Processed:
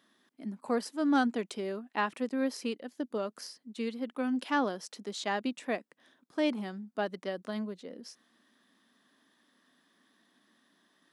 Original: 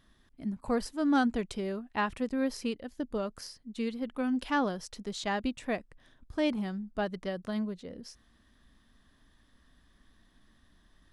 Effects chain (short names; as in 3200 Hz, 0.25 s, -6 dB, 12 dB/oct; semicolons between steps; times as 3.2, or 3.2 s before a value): HPF 220 Hz 24 dB/oct